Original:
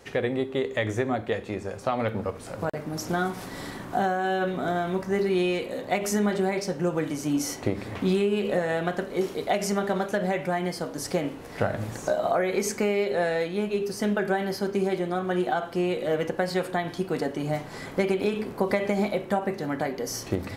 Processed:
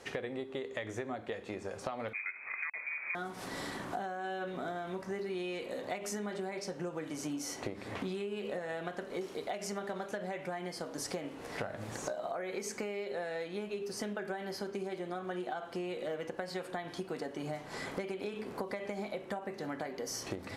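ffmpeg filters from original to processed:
-filter_complex "[0:a]asettb=1/sr,asplit=3[a][b][c];[a]atrim=end=2.134[d];[b]atrim=start=2.13:end=3.15,asetpts=PTS-STARTPTS,afade=t=in:d=0.004:c=qsin,afade=t=out:st=1.016:d=0.004:c=qsin,lowpass=f=2.2k:t=q:w=0.5098,lowpass=f=2.2k:t=q:w=0.6013,lowpass=f=2.2k:t=q:w=0.9,lowpass=f=2.2k:t=q:w=2.563,afreqshift=-2600[e];[c]atrim=start=3.146[f];[d][e]acrossfade=d=0.004:c1=hsin:c2=qsin[g];[g][f]acrossfade=d=0.004:c1=qsin:c2=hsin,lowpass=11k,lowshelf=f=190:g=-9,acompressor=threshold=-36dB:ratio=6"

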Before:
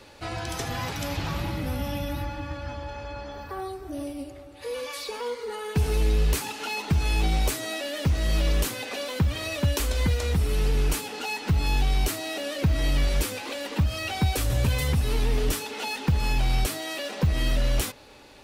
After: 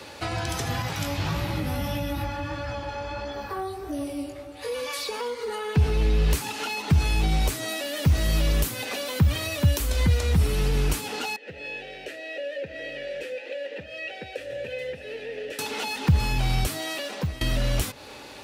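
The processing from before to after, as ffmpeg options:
-filter_complex "[0:a]asettb=1/sr,asplit=3[a][b][c];[a]atrim=end=0.824[d];[b]atrim=start=0.82:end=4.72,asetpts=PTS-STARTPTS,afade=t=in:d=0.004:c=qsin,afade=t=out:st=3.896:d=0.004:c=qsin,flanger=delay=17:depth=4:speed=1.6[e];[c]atrim=start=4.716[f];[d][e]acrossfade=d=0.004:c1=hsin:c2=qsin[g];[g][f]acrossfade=d=0.004:c1=qsin:c2=hsin,asettb=1/sr,asplit=3[h][i][j];[h]atrim=end=5.584[k];[i]atrim=start=5.58:end=6.31,asetpts=PTS-STARTPTS,afade=t=in:d=0.004:c=qsin,afade=t=out:st=0.726:d=0.004:c=qsin,acrossover=split=5100[l][m];[m]acompressor=threshold=-55dB:ratio=4:attack=1:release=60[n];[l][n]amix=inputs=2:normalize=0[o];[j]atrim=start=6.306[p];[k][o]acrossfade=d=0.004:c1=hsin:c2=qsin[q];[q][p]acrossfade=d=0.004:c1=qsin:c2=hsin,asettb=1/sr,asplit=3[r][s][t];[r]atrim=end=7.684[u];[s]atrim=start=7.68:end=9.96,asetpts=PTS-STARTPTS,afade=t=in:d=0.004:c=qsin,afade=t=out:st=2.276:d=0.004:c=qsin,highshelf=f=12k:g=11[v];[t]atrim=start=9.956[w];[u][v]acrossfade=d=0.004:c1=hsin:c2=qsin[x];[x][w]acrossfade=d=0.004:c1=qsin:c2=hsin,asettb=1/sr,asplit=3[y][z][aa];[y]atrim=end=11.364[ab];[z]atrim=start=11.36:end=15.59,asetpts=PTS-STARTPTS,afade=t=in:d=0.004:c=qsin,afade=t=out:st=4.226:d=0.004:c=qsin,asplit=3[ac][ad][ae];[ac]bandpass=f=530:t=q:w=8,volume=0dB[af];[ad]bandpass=f=1.84k:t=q:w=8,volume=-6dB[ag];[ae]bandpass=f=2.48k:t=q:w=8,volume=-9dB[ah];[af][ag][ah]amix=inputs=3:normalize=0[ai];[aa]atrim=start=15.586[aj];[ab][ai]acrossfade=d=0.004:c1=hsin:c2=qsin[ak];[ak][aj]acrossfade=d=0.004:c1=qsin:c2=hsin,asplit=2[al][am];[al]atrim=end=17.41,asetpts=PTS-STARTPTS,afade=t=out:st=16.81:d=0.6:silence=0.0794328[an];[am]atrim=start=17.41,asetpts=PTS-STARTPTS,afade=t=in:d=0.004:c=hsin:silence=0.0794328[ao];[an][ao]concat=n=2:v=0:a=1,lowshelf=f=390:g=-3,acrossover=split=190[ap][aq];[aq]acompressor=threshold=-37dB:ratio=6[ar];[ap][ar]amix=inputs=2:normalize=0,highpass=64,volume=8.5dB"

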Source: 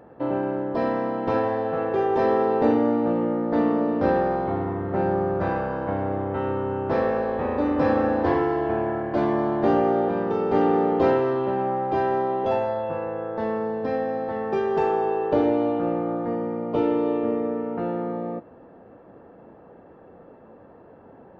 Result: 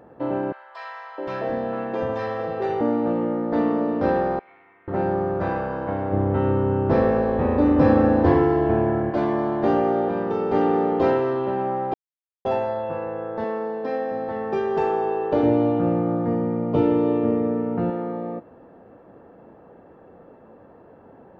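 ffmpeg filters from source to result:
-filter_complex "[0:a]asettb=1/sr,asplit=3[a][b][c];[a]atrim=end=0.524[d];[b]atrim=start=0.52:end=2.81,asetpts=PTS-STARTPTS,afade=t=in:d=0.004:c=qsin,afade=t=out:st=2.286:d=0.004:c=qsin,acrossover=split=290|1000[e][f][g];[f]adelay=660[h];[e]adelay=750[i];[i][h][g]amix=inputs=3:normalize=0,atrim=end_sample=100989[j];[c]atrim=start=2.806[k];[d][j]acrossfade=d=0.004:c1=hsin:c2=qsin[l];[l][k]acrossfade=d=0.004:c1=qsin:c2=hsin,asettb=1/sr,asplit=3[m][n][o];[m]atrim=end=4.394[p];[n]atrim=start=4.39:end=4.88,asetpts=PTS-STARTPTS,afade=t=in:d=0.004:c=qsin,afade=t=out:st=0.486:d=0.004:c=qsin,bandpass=f=2.3k:t=q:w=6.7[q];[o]atrim=start=4.876[r];[p][q]acrossfade=d=0.004:c1=hsin:c2=qsin[s];[s][r]acrossfade=d=0.004:c1=qsin:c2=hsin,asettb=1/sr,asplit=3[t][u][v];[t]atrim=end=6.124[w];[u]atrim=start=6.12:end=9.11,asetpts=PTS-STARTPTS,afade=t=in:d=0.004:c=qsin,afade=t=out:st=2.986:d=0.004:c=qsin,lowshelf=f=320:g=11[x];[v]atrim=start=9.106[y];[w][x]acrossfade=d=0.004:c1=hsin:c2=qsin[z];[z][y]acrossfade=d=0.004:c1=qsin:c2=hsin,asettb=1/sr,asplit=3[aa][ab][ac];[aa]atrim=end=13.444[ad];[ab]atrim=start=13.44:end=14.12,asetpts=PTS-STARTPTS,afade=t=in:d=0.004:c=qsin,afade=t=out:st=0.676:d=0.004:c=qsin,highpass=250[ae];[ac]atrim=start=14.116[af];[ad][ae]acrossfade=d=0.004:c1=hsin:c2=qsin[ag];[ag][af]acrossfade=d=0.004:c1=qsin:c2=hsin,asettb=1/sr,asplit=3[ah][ai][aj];[ah]atrim=end=15.434[ak];[ai]atrim=start=15.43:end=17.9,asetpts=PTS-STARTPTS,afade=t=in:d=0.004:c=qsin,afade=t=out:st=2.466:d=0.004:c=qsin,equalizer=f=120:t=o:w=1.8:g=12[al];[aj]atrim=start=17.896[am];[ak][al]acrossfade=d=0.004:c1=hsin:c2=qsin[an];[an][am]acrossfade=d=0.004:c1=qsin:c2=hsin,asplit=3[ao][ap][aq];[ao]atrim=end=11.94,asetpts=PTS-STARTPTS,afade=t=out:st=11.936:d=0.004:c=hsin[ar];[ap]atrim=start=11.94:end=12.45,asetpts=PTS-STARTPTS,volume=0[as];[aq]atrim=start=12.45,asetpts=PTS-STARTPTS,afade=t=in:d=0.004:c=hsin[at];[ar][as][at]concat=n=3:v=0:a=1"

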